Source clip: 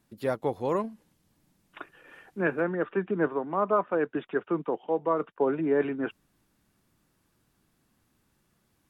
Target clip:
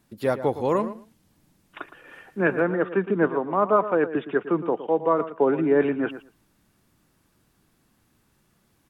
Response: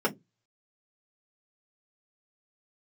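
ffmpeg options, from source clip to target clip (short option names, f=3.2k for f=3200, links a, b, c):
-filter_complex "[0:a]asplit=2[a][b];[b]adelay=114,lowpass=f=3k:p=1,volume=-12.5dB,asplit=2[c][d];[d]adelay=114,lowpass=f=3k:p=1,volume=0.15[e];[a][c][e]amix=inputs=3:normalize=0,volume=5dB"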